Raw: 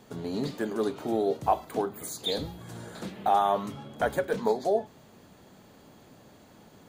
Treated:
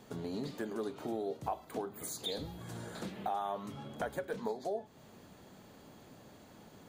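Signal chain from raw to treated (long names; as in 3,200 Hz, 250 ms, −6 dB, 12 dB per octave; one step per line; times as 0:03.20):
downward compressor 2.5 to 1, threshold −36 dBFS, peak gain reduction 12 dB
level −2 dB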